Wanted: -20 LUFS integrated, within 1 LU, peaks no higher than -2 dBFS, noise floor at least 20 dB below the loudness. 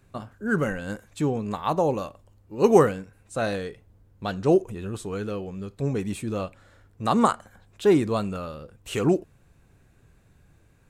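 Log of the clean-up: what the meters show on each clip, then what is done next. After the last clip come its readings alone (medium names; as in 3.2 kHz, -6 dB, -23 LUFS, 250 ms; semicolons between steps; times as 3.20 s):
loudness -25.5 LUFS; peak level -4.0 dBFS; loudness target -20.0 LUFS
-> trim +5.5 dB; peak limiter -2 dBFS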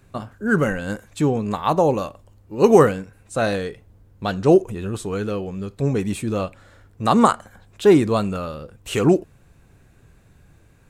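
loudness -20.5 LUFS; peak level -2.0 dBFS; noise floor -54 dBFS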